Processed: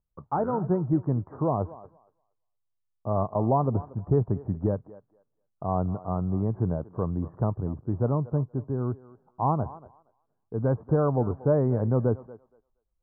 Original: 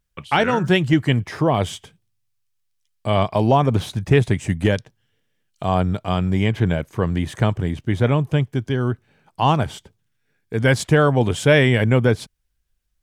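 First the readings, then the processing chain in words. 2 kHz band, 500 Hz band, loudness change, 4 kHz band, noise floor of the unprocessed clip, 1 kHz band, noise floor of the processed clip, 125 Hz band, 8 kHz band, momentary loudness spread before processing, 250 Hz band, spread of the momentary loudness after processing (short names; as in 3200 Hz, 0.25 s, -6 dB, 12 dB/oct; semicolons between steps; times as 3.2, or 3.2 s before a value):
under -25 dB, -7.5 dB, -8.0 dB, under -40 dB, -71 dBFS, -8.0 dB, -78 dBFS, -7.5 dB, under -40 dB, 9 LU, -7.5 dB, 8 LU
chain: steep low-pass 1200 Hz 48 dB/oct; thinning echo 0.235 s, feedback 18%, high-pass 420 Hz, level -16 dB; gain -7.5 dB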